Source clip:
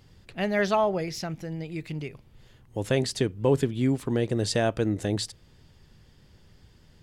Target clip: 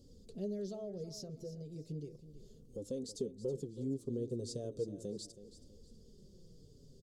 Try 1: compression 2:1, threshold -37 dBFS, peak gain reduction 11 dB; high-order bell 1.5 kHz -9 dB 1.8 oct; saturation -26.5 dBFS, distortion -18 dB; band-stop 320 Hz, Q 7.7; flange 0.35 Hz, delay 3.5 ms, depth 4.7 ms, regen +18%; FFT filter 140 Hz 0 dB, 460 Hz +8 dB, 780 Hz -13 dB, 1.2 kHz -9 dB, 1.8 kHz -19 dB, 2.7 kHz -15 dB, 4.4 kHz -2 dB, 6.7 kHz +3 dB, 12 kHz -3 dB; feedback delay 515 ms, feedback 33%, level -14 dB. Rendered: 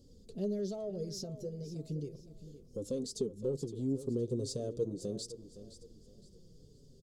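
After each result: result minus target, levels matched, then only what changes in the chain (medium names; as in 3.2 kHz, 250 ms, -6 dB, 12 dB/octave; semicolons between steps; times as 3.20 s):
echo 191 ms late; compression: peak gain reduction -5 dB
change: feedback delay 324 ms, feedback 33%, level -14 dB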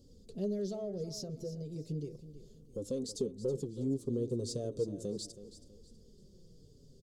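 compression: peak gain reduction -5 dB
change: compression 2:1, threshold -47.5 dBFS, peak gain reduction 16.5 dB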